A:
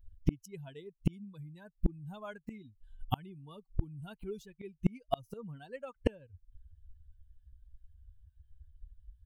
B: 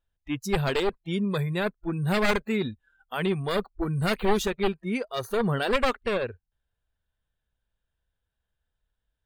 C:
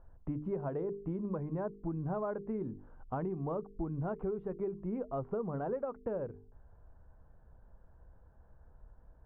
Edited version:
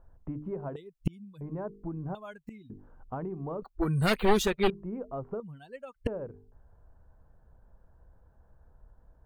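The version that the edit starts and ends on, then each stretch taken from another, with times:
C
0.76–1.41 s: from A
2.15–2.70 s: from A
3.62–4.70 s: from B
5.40–6.07 s: from A

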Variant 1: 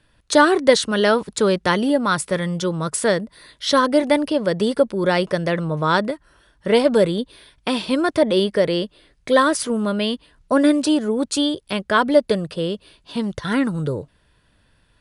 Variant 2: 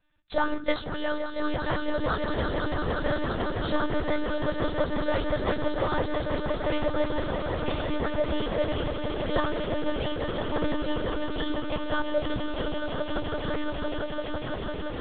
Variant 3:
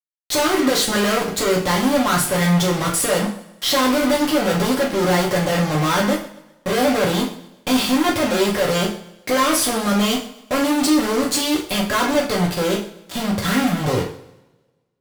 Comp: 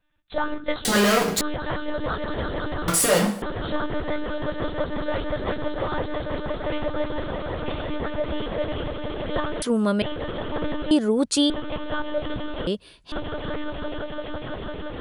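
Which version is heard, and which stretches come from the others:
2
0.85–1.41 s: from 3
2.88–3.42 s: from 3
9.62–10.02 s: from 1
10.91–11.50 s: from 1
12.67–13.12 s: from 1

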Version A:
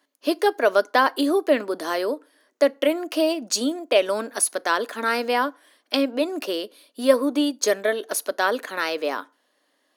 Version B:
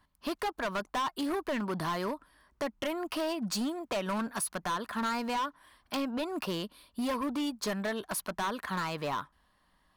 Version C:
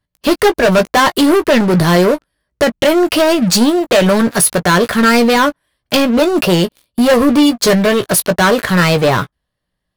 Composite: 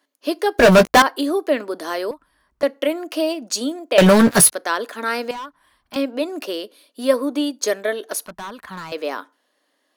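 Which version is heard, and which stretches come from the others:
A
0.59–1.02 s: from C
2.11–2.63 s: from B
3.98–4.52 s: from C
5.31–5.96 s: from B
8.26–8.92 s: from B

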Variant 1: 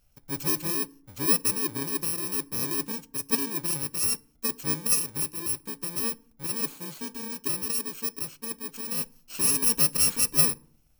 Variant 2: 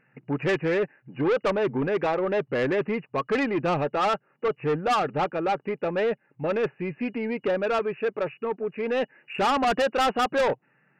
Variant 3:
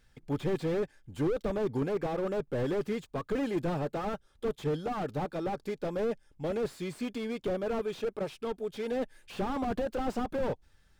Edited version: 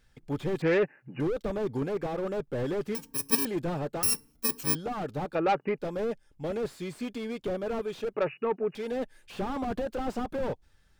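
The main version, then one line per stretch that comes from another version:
3
0.62–1.20 s: from 2
2.95–3.45 s: from 1
4.03–4.75 s: from 1
5.35–5.78 s: from 2
8.14–8.75 s: from 2

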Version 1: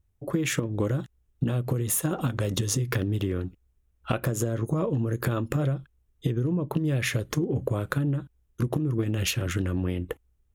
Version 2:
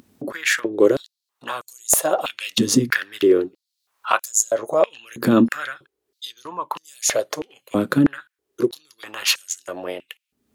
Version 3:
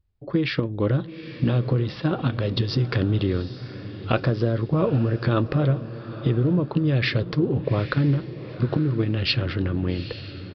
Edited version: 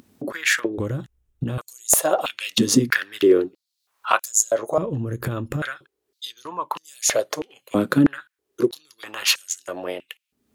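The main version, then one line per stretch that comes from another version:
2
0.78–1.58 s: from 1
4.78–5.62 s: from 1
not used: 3

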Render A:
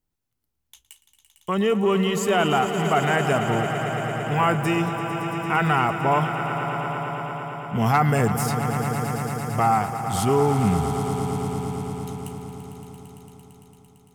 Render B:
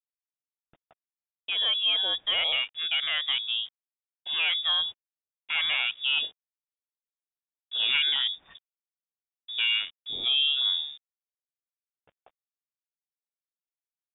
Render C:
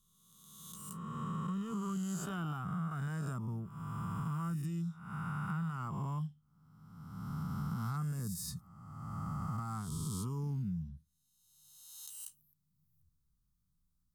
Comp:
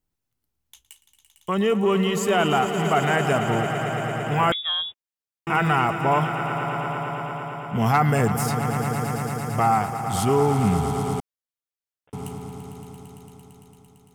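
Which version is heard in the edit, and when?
A
4.52–5.47 s: from B
11.20–12.13 s: from B
not used: C

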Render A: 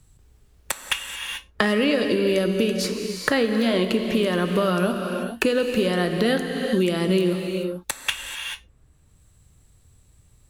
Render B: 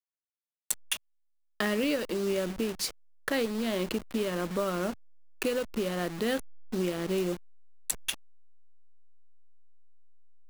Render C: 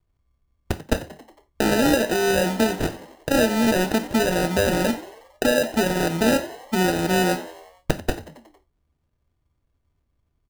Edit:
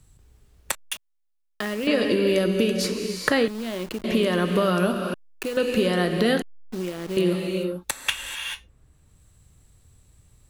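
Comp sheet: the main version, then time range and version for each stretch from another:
A
0.75–1.87 s: from B
3.48–4.04 s: from B
5.14–5.57 s: from B
6.42–7.17 s: from B
not used: C

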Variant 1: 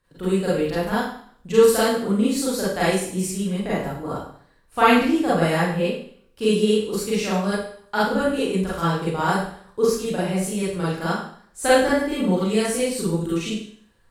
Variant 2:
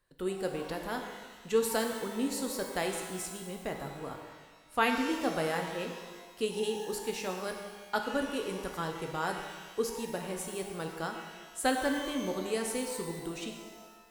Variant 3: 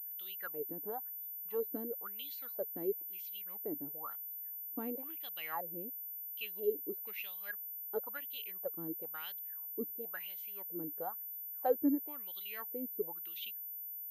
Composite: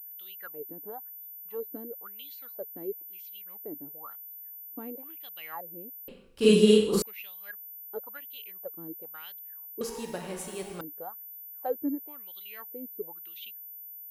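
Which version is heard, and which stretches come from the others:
3
6.08–7.02 s: from 1
9.81–10.81 s: from 2

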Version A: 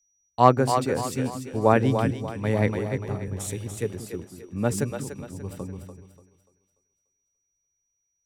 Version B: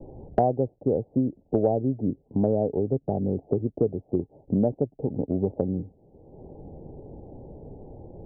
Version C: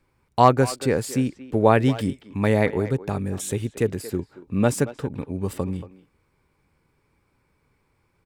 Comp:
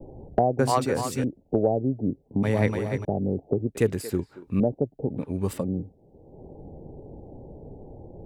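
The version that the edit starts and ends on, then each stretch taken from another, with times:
B
0.59–1.24 s: from A
2.43–3.05 s: from A
3.75–4.60 s: from C
5.21–5.61 s: from C, crossfade 0.10 s

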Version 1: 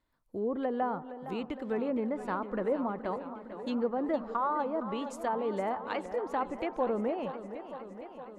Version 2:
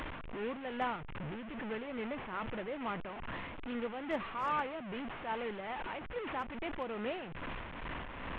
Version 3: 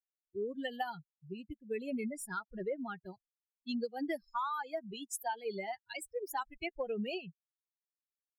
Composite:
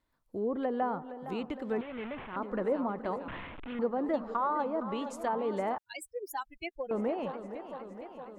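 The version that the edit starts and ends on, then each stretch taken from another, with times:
1
1.81–2.36 s: from 2
3.28–3.79 s: from 2
5.78–6.91 s: from 3

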